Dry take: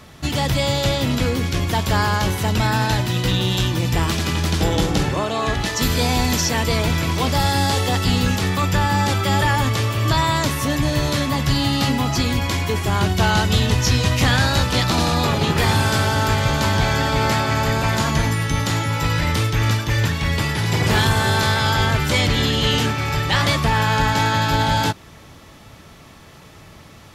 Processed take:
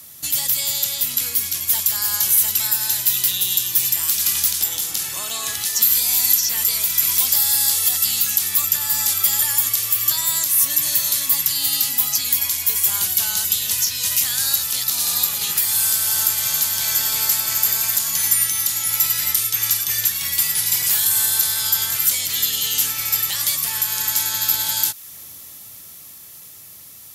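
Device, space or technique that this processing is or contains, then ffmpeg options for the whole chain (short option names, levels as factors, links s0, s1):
FM broadcast chain: -filter_complex "[0:a]highpass=f=67:w=0.5412,highpass=f=67:w=1.3066,dynaudnorm=f=180:g=21:m=3.76,acrossover=split=940|4900[s0][s1][s2];[s0]acompressor=threshold=0.0316:ratio=4[s3];[s1]acompressor=threshold=0.0794:ratio=4[s4];[s2]acompressor=threshold=0.0398:ratio=4[s5];[s3][s4][s5]amix=inputs=3:normalize=0,aemphasis=mode=production:type=75fm,alimiter=limit=0.501:level=0:latency=1:release=281,asoftclip=type=hard:threshold=0.398,lowpass=f=15000:w=0.5412,lowpass=f=15000:w=1.3066,aemphasis=mode=production:type=75fm,volume=0.266"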